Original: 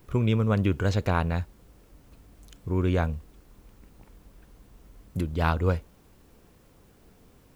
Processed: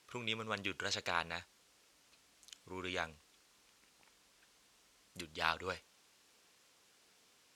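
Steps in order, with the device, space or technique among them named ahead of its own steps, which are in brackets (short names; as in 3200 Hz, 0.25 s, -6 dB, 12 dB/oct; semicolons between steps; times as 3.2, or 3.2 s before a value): piezo pickup straight into a mixer (LPF 5200 Hz 12 dB/oct; differentiator); gain +8 dB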